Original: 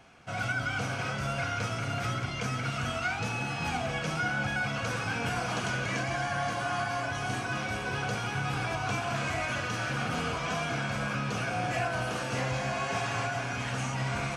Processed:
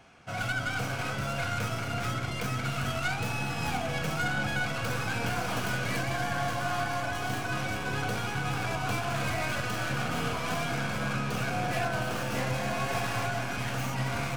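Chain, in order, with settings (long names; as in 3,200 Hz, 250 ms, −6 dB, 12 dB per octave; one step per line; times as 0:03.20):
stylus tracing distortion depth 0.15 ms
delay with a low-pass on its return 332 ms, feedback 71%, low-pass 490 Hz, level −8 dB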